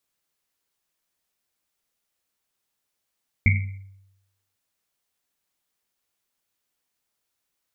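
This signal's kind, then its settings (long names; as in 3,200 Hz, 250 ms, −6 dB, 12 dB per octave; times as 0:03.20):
drum after Risset, pitch 97 Hz, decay 0.89 s, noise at 2,200 Hz, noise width 250 Hz, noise 30%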